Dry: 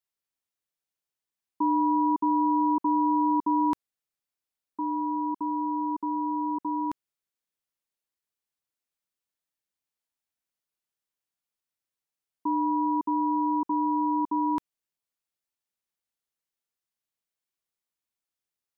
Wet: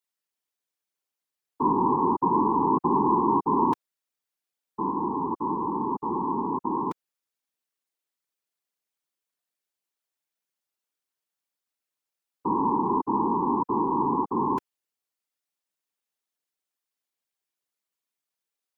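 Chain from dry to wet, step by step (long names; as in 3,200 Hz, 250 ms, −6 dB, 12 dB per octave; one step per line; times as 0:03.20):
high-pass filter 200 Hz
random phases in short frames
level +1.5 dB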